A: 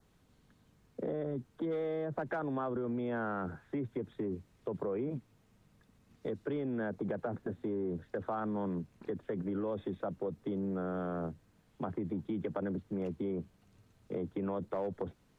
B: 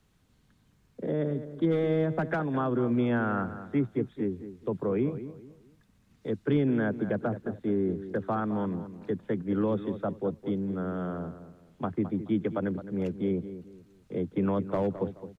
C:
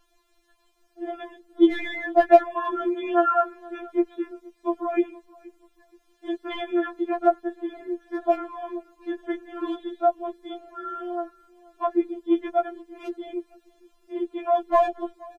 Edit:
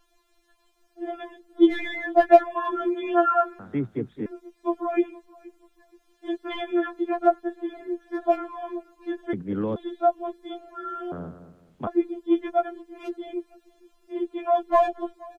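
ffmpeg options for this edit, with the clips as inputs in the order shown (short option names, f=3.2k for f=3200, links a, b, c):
-filter_complex "[1:a]asplit=3[a][b][c];[2:a]asplit=4[d][e][f][g];[d]atrim=end=3.592[h];[a]atrim=start=3.588:end=4.262[i];[e]atrim=start=4.258:end=9.332[j];[b]atrim=start=9.328:end=9.762[k];[f]atrim=start=9.758:end=11.122[l];[c]atrim=start=11.118:end=11.872[m];[g]atrim=start=11.868[n];[h][i]acrossfade=d=0.004:c1=hsin:c2=hsin[o];[o][j]acrossfade=d=0.004:c1=hsin:c2=hsin[p];[p][k]acrossfade=d=0.004:c1=hsin:c2=hsin[q];[q][l]acrossfade=d=0.004:c1=hsin:c2=hsin[r];[r][m]acrossfade=d=0.004:c1=hsin:c2=hsin[s];[s][n]acrossfade=d=0.004:c1=hsin:c2=hsin"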